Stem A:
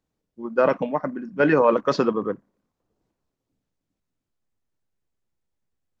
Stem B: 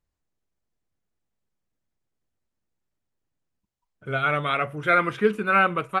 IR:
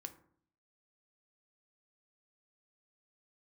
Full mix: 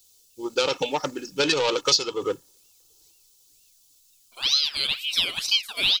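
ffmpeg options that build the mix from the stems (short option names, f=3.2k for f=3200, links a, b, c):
-filter_complex "[0:a]aecho=1:1:2.3:0.89,asoftclip=type=tanh:threshold=-12.5dB,volume=-0.5dB[a];[1:a]aeval=exprs='val(0)*sin(2*PI*1800*n/s+1800*0.55/2.1*sin(2*PI*2.1*n/s))':c=same,adelay=300,volume=-11.5dB[b];[a][b]amix=inputs=2:normalize=0,highshelf=f=2.1k:g=8.5,aexciter=amount=13.5:drive=2.9:freq=2.9k,acompressor=threshold=-20dB:ratio=4"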